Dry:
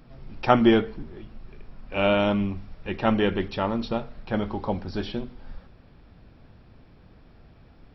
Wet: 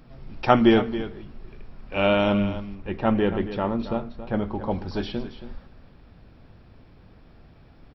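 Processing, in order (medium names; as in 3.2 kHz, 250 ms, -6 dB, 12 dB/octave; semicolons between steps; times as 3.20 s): 2.75–4.71 s: treble shelf 2.3 kHz -11 dB; on a send: delay 275 ms -12.5 dB; on the sum: trim +1 dB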